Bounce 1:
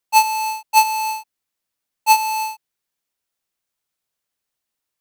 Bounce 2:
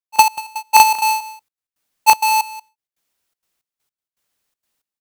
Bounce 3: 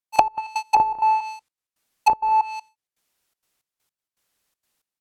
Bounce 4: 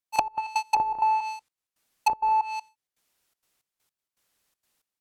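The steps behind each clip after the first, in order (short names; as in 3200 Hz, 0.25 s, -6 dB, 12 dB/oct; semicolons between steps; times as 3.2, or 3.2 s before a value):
in parallel at -6 dB: wrapped overs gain 10.5 dB; on the sum: step gate "..x...xxxx.xx" 162 bpm -24 dB; echo 0.186 s -17 dB; gain +4 dB
treble ducked by the level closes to 520 Hz, closed at -11 dBFS; gain +1 dB
compressor 6:1, threshold -20 dBFS, peak gain reduction 11 dB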